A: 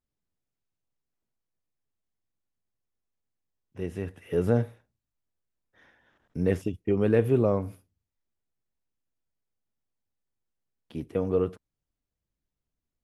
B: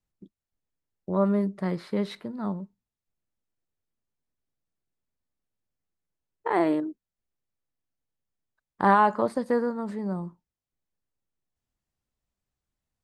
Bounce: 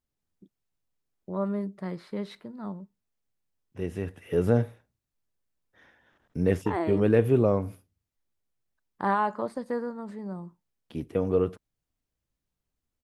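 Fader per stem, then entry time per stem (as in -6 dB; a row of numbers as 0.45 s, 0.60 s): +1.0 dB, -6.0 dB; 0.00 s, 0.20 s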